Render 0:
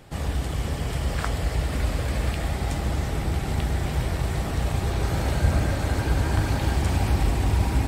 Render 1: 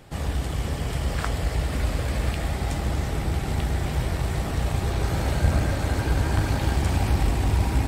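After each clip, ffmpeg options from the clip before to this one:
ffmpeg -i in.wav -af "aeval=exprs='0.355*(cos(1*acos(clip(val(0)/0.355,-1,1)))-cos(1*PI/2))+0.0398*(cos(2*acos(clip(val(0)/0.355,-1,1)))-cos(2*PI/2))':channel_layout=same" out.wav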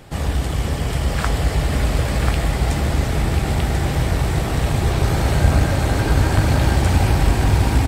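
ffmpeg -i in.wav -af "aecho=1:1:1039:0.531,volume=6dB" out.wav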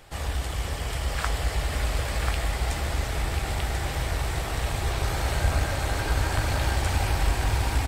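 ffmpeg -i in.wav -af "equalizer=frequency=190:width_type=o:width=2.3:gain=-12,volume=-4dB" out.wav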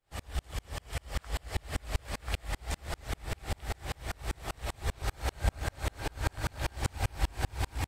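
ffmpeg -i in.wav -af "aeval=exprs='val(0)*pow(10,-38*if(lt(mod(-5.1*n/s,1),2*abs(-5.1)/1000),1-mod(-5.1*n/s,1)/(2*abs(-5.1)/1000),(mod(-5.1*n/s,1)-2*abs(-5.1)/1000)/(1-2*abs(-5.1)/1000))/20)':channel_layout=same" out.wav

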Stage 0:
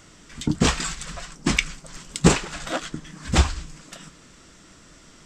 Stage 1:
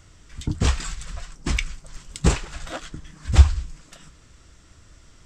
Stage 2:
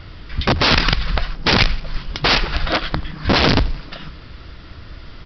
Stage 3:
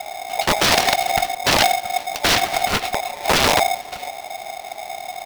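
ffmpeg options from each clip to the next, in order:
ffmpeg -i in.wav -af "lowshelf=frequency=130:width_type=q:width=1.5:gain=10.5,volume=-5.5dB" out.wav
ffmpeg -i in.wav -af "apsyclip=14.5dB,aresample=11025,aeval=exprs='(mod(2.66*val(0)+1,2)-1)/2.66':channel_layout=same,aresample=44100,aecho=1:1:86|172|258|344:0.0944|0.05|0.0265|0.0141" out.wav
ffmpeg -i in.wav -filter_complex "[0:a]equalizer=frequency=240:width_type=o:width=0.77:gain=-2.5,acrossover=split=110|500|3000[link_01][link_02][link_03][link_04];[link_01]acompressor=mode=upward:threshold=-22dB:ratio=2.5[link_05];[link_05][link_02][link_03][link_04]amix=inputs=4:normalize=0,aeval=exprs='val(0)*sgn(sin(2*PI*730*n/s))':channel_layout=same,volume=-1.5dB" out.wav

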